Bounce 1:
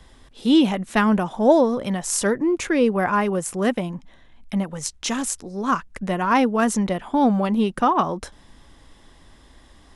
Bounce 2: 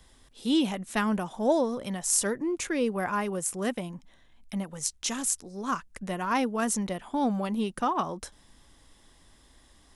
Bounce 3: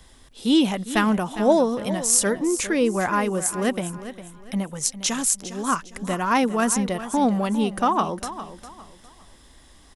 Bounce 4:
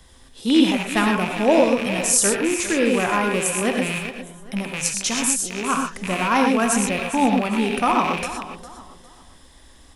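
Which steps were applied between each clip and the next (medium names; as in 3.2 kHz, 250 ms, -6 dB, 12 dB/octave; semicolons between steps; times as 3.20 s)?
treble shelf 5.3 kHz +11.5 dB; trim -9 dB
feedback delay 405 ms, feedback 31%, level -13 dB; trim +6.5 dB
rattle on loud lows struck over -37 dBFS, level -17 dBFS; on a send at -2 dB: reverberation, pre-delay 3 ms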